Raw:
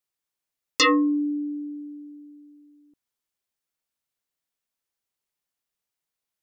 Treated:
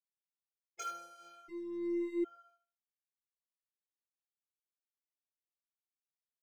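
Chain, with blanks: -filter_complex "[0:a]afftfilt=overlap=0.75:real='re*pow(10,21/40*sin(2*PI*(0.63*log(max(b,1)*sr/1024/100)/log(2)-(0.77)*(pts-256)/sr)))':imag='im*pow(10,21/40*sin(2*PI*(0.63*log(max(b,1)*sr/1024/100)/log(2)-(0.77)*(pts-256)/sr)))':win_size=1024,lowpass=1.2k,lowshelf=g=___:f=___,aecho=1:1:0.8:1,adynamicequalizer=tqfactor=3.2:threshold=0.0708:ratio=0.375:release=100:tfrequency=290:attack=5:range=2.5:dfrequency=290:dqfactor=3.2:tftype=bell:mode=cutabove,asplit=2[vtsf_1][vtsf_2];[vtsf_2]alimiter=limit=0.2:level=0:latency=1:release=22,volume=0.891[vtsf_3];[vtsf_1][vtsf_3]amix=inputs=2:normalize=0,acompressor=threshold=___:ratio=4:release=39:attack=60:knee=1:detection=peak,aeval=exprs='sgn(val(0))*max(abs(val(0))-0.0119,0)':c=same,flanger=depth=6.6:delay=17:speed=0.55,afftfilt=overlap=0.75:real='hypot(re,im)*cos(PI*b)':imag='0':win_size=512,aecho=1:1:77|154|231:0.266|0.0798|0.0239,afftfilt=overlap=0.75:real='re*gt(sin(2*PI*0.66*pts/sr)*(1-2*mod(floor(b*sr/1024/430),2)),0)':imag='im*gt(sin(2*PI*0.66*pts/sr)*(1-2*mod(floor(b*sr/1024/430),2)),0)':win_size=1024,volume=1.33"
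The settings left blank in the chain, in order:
-2.5, 200, 0.1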